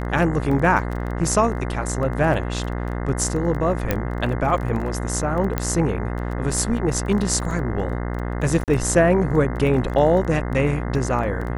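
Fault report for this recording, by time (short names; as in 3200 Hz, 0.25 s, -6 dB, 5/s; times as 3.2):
buzz 60 Hz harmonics 35 -26 dBFS
crackle 16/s -28 dBFS
3.91 pop -6 dBFS
5.58 pop -8 dBFS
8.64–8.68 gap 38 ms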